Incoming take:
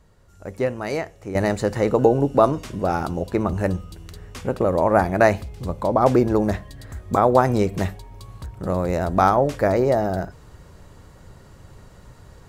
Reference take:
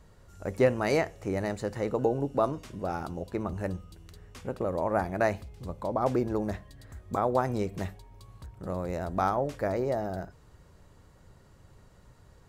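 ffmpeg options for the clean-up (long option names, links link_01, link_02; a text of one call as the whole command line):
ffmpeg -i in.wav -af "asetnsamples=nb_out_samples=441:pad=0,asendcmd='1.35 volume volume -10.5dB',volume=0dB" out.wav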